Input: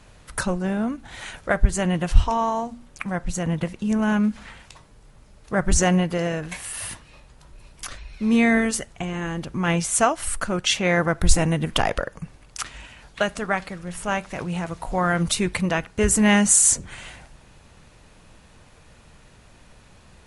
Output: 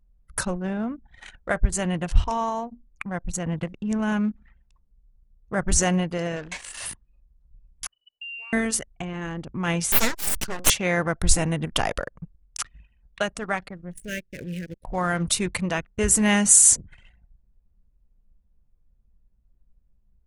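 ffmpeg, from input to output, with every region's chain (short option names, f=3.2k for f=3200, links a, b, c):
-filter_complex "[0:a]asettb=1/sr,asplit=3[a][b][c];[a]atrim=end=6.364[d];[b]atrim=start=6.36:end=6.86,asetpts=PTS-STARTPTS,afade=t=in:d=0.004:c=qsin,afade=t=out:st=0.496:d=0.004:c=qsin,aeval=exprs='val(0)+0.5*0.0251*sgn(val(0))':c=same,lowpass=f=7.8k:w=0.5412,lowpass=f=7.8k:w=1.3066,equalizer=f=100:w=0.65:g=-10.5[e];[c]atrim=start=6.856[f];[d][e]acrossfade=d=0.004:c1=hsin:c2=qsin[g];[g][f]acrossfade=d=0.004:c1=qsin:c2=hsin,asettb=1/sr,asplit=3[h][i][j];[h]atrim=end=7.874[k];[i]atrim=start=7.87:end=8.53,asetpts=PTS-STARTPTS,afade=t=in:d=0.004:c=qsin,afade=t=out:st=0.656:d=0.004:c=qsin,lowpass=f=2.6k:t=q:w=0.5098,lowpass=f=2.6k:t=q:w=0.6013,lowpass=f=2.6k:t=q:w=0.9,lowpass=f=2.6k:t=q:w=2.563,afreqshift=-3000,agate=range=-14dB:threshold=-35dB:ratio=16:release=100:detection=peak,acompressor=threshold=-32dB:ratio=10:attack=3.2:release=140:knee=1:detection=peak[l];[j]atrim=start=8.526[m];[k][l]acrossfade=d=0.004:c1=hsin:c2=qsin[n];[n][m]acrossfade=d=0.004:c1=qsin:c2=hsin,asettb=1/sr,asplit=3[o][p][q];[o]atrim=end=9.924[r];[p]atrim=start=9.92:end=10.7,asetpts=PTS-STARTPTS,afade=t=in:d=0.004:c=qsin,afade=t=out:st=0.776:d=0.004:c=qsin,equalizer=f=5.1k:w=0.82:g=11,bandreject=f=60:t=h:w=6,bandreject=f=120:t=h:w=6,bandreject=f=180:t=h:w=6,bandreject=f=240:t=h:w=6,bandreject=f=300:t=h:w=6,bandreject=f=360:t=h:w=6,aeval=exprs='abs(val(0))':c=same[s];[q]atrim=start=10.696[t];[r][s]acrossfade=d=0.004:c1=hsin:c2=qsin[u];[u][t]acrossfade=d=0.004:c1=qsin:c2=hsin,asettb=1/sr,asplit=3[v][w][x];[v]atrim=end=13.934[y];[w]atrim=start=13.93:end=14.85,asetpts=PTS-STARTPTS,afade=t=in:d=0.004:c=qsin,afade=t=out:st=0.916:d=0.004:c=qsin,aeval=exprs='sgn(val(0))*max(abs(val(0))-0.00531,0)':c=same,acrusher=bits=7:dc=4:mix=0:aa=0.000001,asuperstop=centerf=950:order=12:qfactor=0.94[z];[x]atrim=start=14.846[aa];[y][z]acrossfade=d=0.004:c1=hsin:c2=qsin[ab];[ab][aa]acrossfade=d=0.004:c1=qsin:c2=hsin,anlmdn=10,highshelf=f=5.4k:g=7.5,volume=-3.5dB"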